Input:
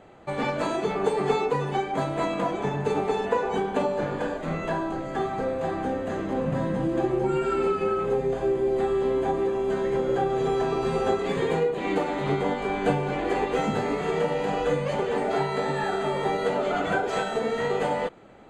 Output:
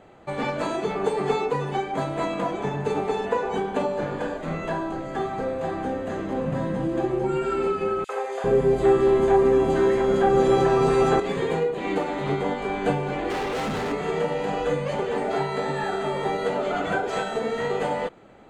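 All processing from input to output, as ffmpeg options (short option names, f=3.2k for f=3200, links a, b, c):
-filter_complex "[0:a]asettb=1/sr,asplit=3[a][b][c];[a]atrim=end=8.044[d];[b]atrim=start=8.04:end=11.2,asetpts=PTS-STARTPTS,afade=t=in:d=0.004:c=qsin,afade=t=out:st=3.156:d=0.004:c=qsin,acontrast=87,acrossover=split=580|3300[e][f][g];[f]adelay=50[h];[e]adelay=400[i];[i][h][g]amix=inputs=3:normalize=0,atrim=end_sample=139356[j];[c]atrim=start=11.196[k];[d][j]acrossfade=d=0.004:c1=hsin:c2=qsin[l];[l][k]acrossfade=d=0.004:c1=qsin:c2=hsin,asettb=1/sr,asplit=3[m][n][o];[m]atrim=end=13.304[p];[n]atrim=start=13.3:end=13.92,asetpts=PTS-STARTPTS,afade=t=in:d=0.004:c=qsin,afade=t=out:st=0.616:d=0.004:c=qsin,acontrast=33,asoftclip=type=hard:threshold=-25.5dB[q];[o]atrim=start=13.916[r];[p][q]acrossfade=d=0.004:c1=hsin:c2=qsin[s];[s][r]acrossfade=d=0.004:c1=qsin:c2=hsin"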